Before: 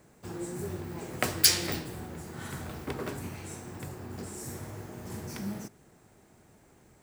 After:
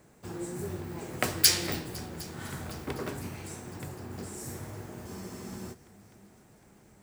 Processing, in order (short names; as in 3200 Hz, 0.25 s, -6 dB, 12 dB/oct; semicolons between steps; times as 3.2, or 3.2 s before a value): multi-head echo 0.253 s, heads second and third, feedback 56%, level -24 dB; spectral freeze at 5.08, 0.64 s